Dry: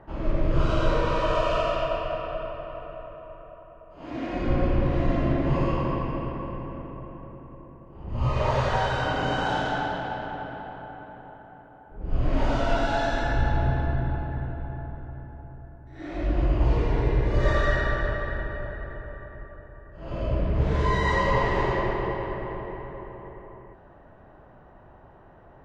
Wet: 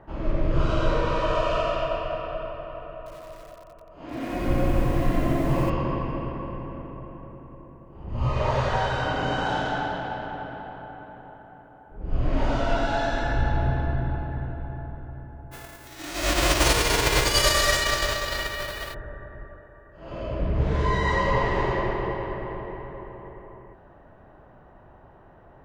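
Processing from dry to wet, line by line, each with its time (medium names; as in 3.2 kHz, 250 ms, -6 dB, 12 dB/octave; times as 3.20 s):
2.97–5.70 s: bit-crushed delay 90 ms, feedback 80%, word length 7-bit, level -7.5 dB
15.51–18.93 s: formants flattened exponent 0.3
19.57–20.40 s: bass shelf 190 Hz -8 dB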